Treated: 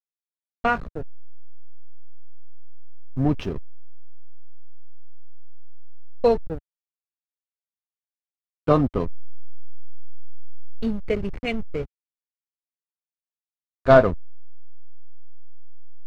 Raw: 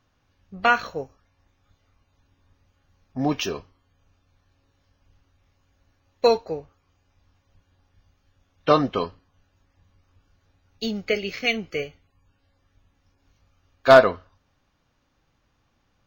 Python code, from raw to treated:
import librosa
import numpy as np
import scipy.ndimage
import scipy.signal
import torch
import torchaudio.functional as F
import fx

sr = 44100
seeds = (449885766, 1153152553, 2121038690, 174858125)

y = fx.backlash(x, sr, play_db=-24.0)
y = fx.quant_dither(y, sr, seeds[0], bits=8, dither='none')
y = fx.riaa(y, sr, side='playback')
y = y * librosa.db_to_amplitude(-3.0)